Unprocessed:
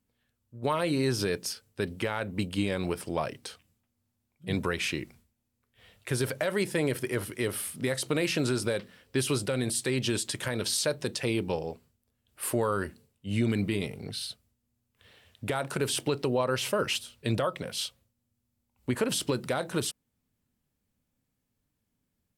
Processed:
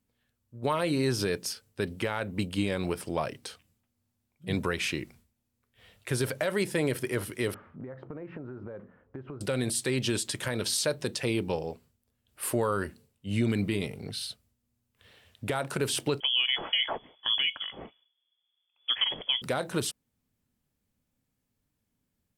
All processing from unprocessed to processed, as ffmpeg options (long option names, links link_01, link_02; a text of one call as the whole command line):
ffmpeg -i in.wav -filter_complex "[0:a]asettb=1/sr,asplit=3[link_01][link_02][link_03];[link_01]atrim=end=7.544[link_04];[link_02]atrim=start=7.54:end=9.41,asetpts=PTS-STARTPTS,afade=type=in:duration=0.004:curve=qsin,afade=type=out:start_time=1.866:duration=0.004:curve=qsin,lowpass=frequency=1400:width=0.5412,lowpass=frequency=1400:width=1.3066,acompressor=threshold=-37dB:ratio=8:attack=3.2:release=140:knee=1:detection=peak[link_05];[link_03]atrim=start=9.406[link_06];[link_04][link_05]acrossfade=duration=0.004:curve1=hsin:curve2=qsin[link_07];[link_07][link_06]acrossfade=duration=0.004:curve1=qsin:curve2=hsin,asettb=1/sr,asplit=3[link_08][link_09][link_10];[link_08]atrim=end=16.204[link_11];[link_09]atrim=start=16.2:end=19.42,asetpts=PTS-STARTPTS,afade=type=in:duration=0.004:curve=qsin,afade=type=out:start_time=3.216:duration=0.004:curve=qsin,acrusher=bits=8:mode=log:mix=0:aa=0.000001,lowpass=frequency=3000:width_type=q:width=0.5098,lowpass=frequency=3000:width_type=q:width=0.6013,lowpass=frequency=3000:width_type=q:width=0.9,lowpass=frequency=3000:width_type=q:width=2.563,afreqshift=-3500[link_12];[link_10]atrim=start=19.416[link_13];[link_11][link_12]acrossfade=duration=0.004:curve1=hsin:curve2=qsin[link_14];[link_14][link_13]acrossfade=duration=0.004:curve1=qsin:curve2=hsin" out.wav